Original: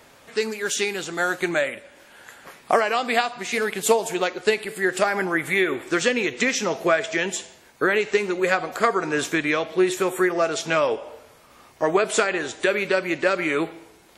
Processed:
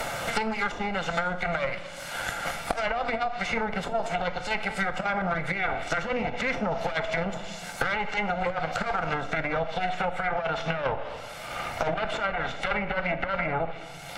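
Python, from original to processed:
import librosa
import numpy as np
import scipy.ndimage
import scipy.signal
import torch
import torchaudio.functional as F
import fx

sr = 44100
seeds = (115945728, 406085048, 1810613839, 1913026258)

y = fx.lower_of_two(x, sr, delay_ms=1.4)
y = fx.over_compress(y, sr, threshold_db=-24.0, ratio=-0.5)
y = fx.bass_treble(y, sr, bass_db=0, treble_db=fx.steps((0.0, 5.0), (9.88, -9.0)))
y = fx.env_lowpass_down(y, sr, base_hz=890.0, full_db=-19.5)
y = fx.low_shelf(y, sr, hz=380.0, db=-5.5)
y = fx.room_shoebox(y, sr, seeds[0], volume_m3=990.0, walls='furnished', distance_m=0.81)
y = fx.band_squash(y, sr, depth_pct=100)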